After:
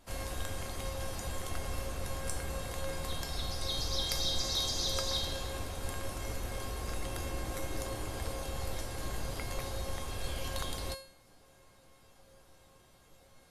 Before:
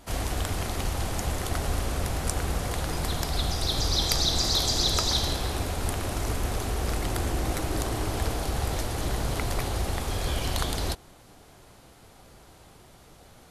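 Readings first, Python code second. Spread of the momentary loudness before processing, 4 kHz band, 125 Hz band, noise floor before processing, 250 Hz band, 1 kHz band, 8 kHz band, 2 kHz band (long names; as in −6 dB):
7 LU, −7.5 dB, −11.0 dB, −53 dBFS, −11.0 dB, −9.5 dB, −8.0 dB, −8.0 dB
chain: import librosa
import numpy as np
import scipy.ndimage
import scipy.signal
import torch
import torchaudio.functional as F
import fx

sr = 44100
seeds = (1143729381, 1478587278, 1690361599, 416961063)

y = fx.comb_fb(x, sr, f0_hz=540.0, decay_s=0.5, harmonics='all', damping=0.0, mix_pct=90)
y = y * librosa.db_to_amplitude(8.0)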